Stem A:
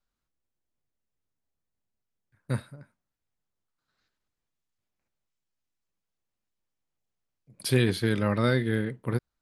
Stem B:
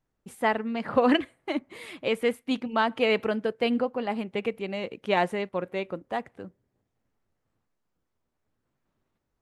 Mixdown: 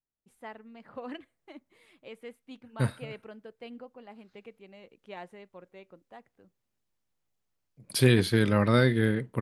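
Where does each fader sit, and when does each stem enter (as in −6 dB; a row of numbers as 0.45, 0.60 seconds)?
+2.0, −19.0 decibels; 0.30, 0.00 seconds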